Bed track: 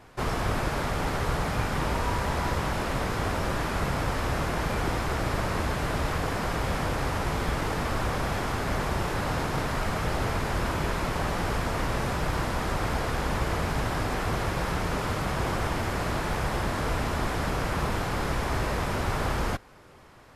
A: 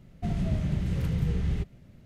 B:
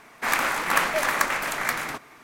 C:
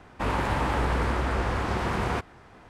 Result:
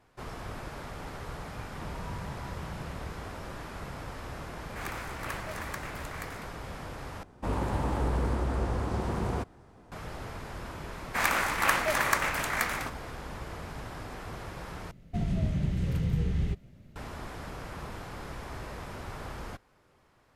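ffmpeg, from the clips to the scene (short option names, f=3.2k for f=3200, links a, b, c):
-filter_complex "[1:a]asplit=2[a][b];[2:a]asplit=2[c][d];[0:a]volume=-12.5dB[e];[3:a]equalizer=f=2.2k:t=o:w=2.5:g=-10.5[f];[e]asplit=3[g][h][i];[g]atrim=end=7.234[j];[f]atrim=end=2.69,asetpts=PTS-STARTPTS,volume=-1.5dB[k];[h]atrim=start=9.916:end=14.914[l];[b]atrim=end=2.05,asetpts=PTS-STARTPTS,volume=-1dB[m];[i]atrim=start=16.956[n];[a]atrim=end=2.05,asetpts=PTS-STARTPTS,volume=-14.5dB,afade=t=in:d=0.004:c=hsin,afade=t=out:st=2.046:d=0.004:c=hsin,adelay=1580[o];[c]atrim=end=2.23,asetpts=PTS-STARTPTS,volume=-16.5dB,afade=t=in:d=0.004:c=hsin,afade=t=out:st=2.226:d=0.004:c=hsin,adelay=199773S[p];[d]atrim=end=2.23,asetpts=PTS-STARTPTS,volume=-3.5dB,afade=t=in:d=0.004:c=hsin,afade=t=out:st=2.226:d=0.004:c=hsin,adelay=10920[q];[j][k]acrossfade=d=0.004:c1=hsin:c2=hsin[r];[r][l]acrossfade=d=0.004:c1=hsin:c2=hsin[s];[s][m]acrossfade=d=0.004:c1=hsin:c2=hsin[t];[t][n]acrossfade=d=0.004:c1=hsin:c2=hsin[u];[u][o][p][q]amix=inputs=4:normalize=0"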